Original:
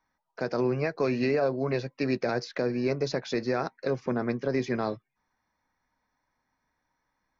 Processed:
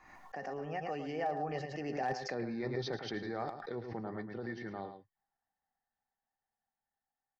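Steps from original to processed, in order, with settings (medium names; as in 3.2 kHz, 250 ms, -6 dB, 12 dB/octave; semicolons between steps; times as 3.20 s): Doppler pass-by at 2.33 s, 40 m/s, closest 9.8 m; treble shelf 5.3 kHz -8 dB; reverse; compression 10:1, threshold -39 dBFS, peak gain reduction 16.5 dB; reverse; feedback comb 400 Hz, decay 0.16 s, harmonics all, mix 40%; small resonant body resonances 770/1800 Hz, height 14 dB, ringing for 50 ms; hard clipper -34 dBFS, distortion -34 dB; on a send: delay 109 ms -8.5 dB; on the sum: swell ahead of each attack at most 59 dB/s; trim +7 dB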